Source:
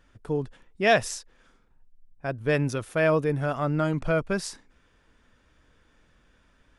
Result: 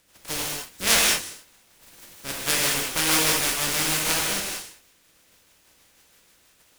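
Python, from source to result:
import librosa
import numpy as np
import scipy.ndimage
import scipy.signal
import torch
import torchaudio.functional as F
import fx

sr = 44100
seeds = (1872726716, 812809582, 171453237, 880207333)

y = fx.spec_flatten(x, sr, power=0.13)
y = fx.rotary(y, sr, hz=6.3)
y = fx.rev_gated(y, sr, seeds[0], gate_ms=240, shape='flat', drr_db=-3.5)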